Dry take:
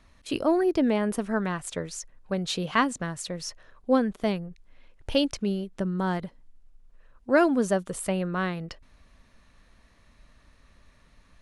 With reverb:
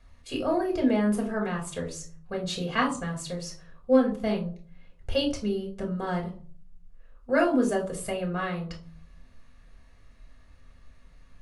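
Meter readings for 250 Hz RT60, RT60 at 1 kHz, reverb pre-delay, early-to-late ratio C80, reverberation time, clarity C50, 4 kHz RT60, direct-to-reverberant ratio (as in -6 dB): 0.70 s, 0.40 s, 4 ms, 14.5 dB, 0.45 s, 10.5 dB, 0.25 s, -0.5 dB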